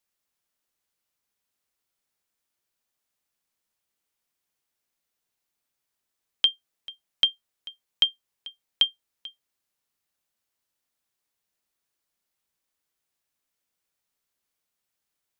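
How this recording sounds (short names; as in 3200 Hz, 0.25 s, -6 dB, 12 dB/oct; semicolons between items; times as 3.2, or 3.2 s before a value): noise floor -83 dBFS; spectral tilt -1.5 dB/oct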